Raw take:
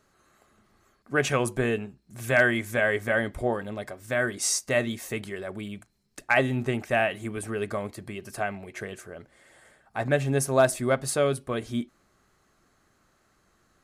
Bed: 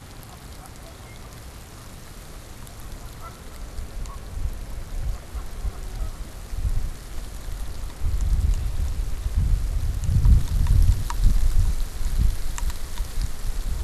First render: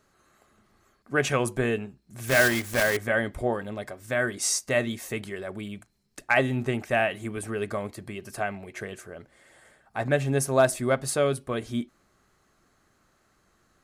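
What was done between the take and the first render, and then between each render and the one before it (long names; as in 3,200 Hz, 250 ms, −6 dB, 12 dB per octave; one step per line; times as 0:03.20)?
0:02.27–0:02.97: one scale factor per block 3 bits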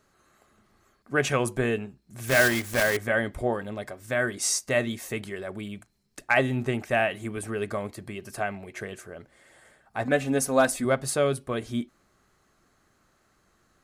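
0:10.04–0:10.85: comb filter 4 ms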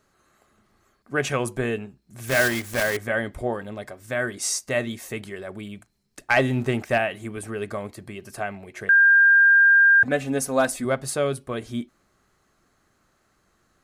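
0:06.29–0:06.98: leveller curve on the samples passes 1
0:08.89–0:10.03: beep over 1,600 Hz −11.5 dBFS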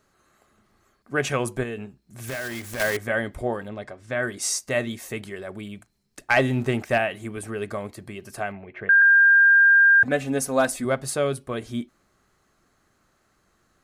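0:01.63–0:02.80: downward compressor, threshold −28 dBFS
0:03.68–0:04.23: high-frequency loss of the air 81 metres
0:08.52–0:09.02: low-pass filter 2,800 Hz 24 dB per octave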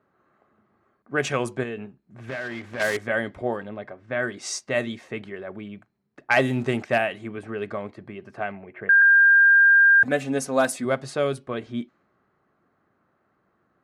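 low-pass that shuts in the quiet parts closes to 1,500 Hz, open at −17.5 dBFS
high-pass filter 120 Hz 12 dB per octave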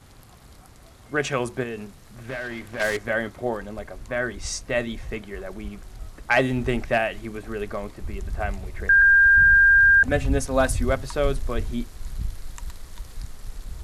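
mix in bed −8.5 dB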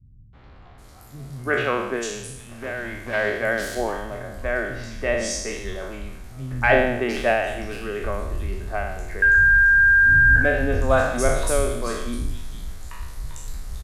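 peak hold with a decay on every bin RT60 0.90 s
three-band delay without the direct sound lows, mids, highs 330/780 ms, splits 190/3,400 Hz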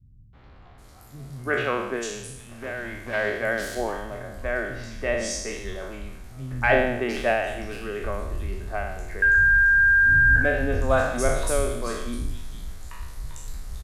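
level −2.5 dB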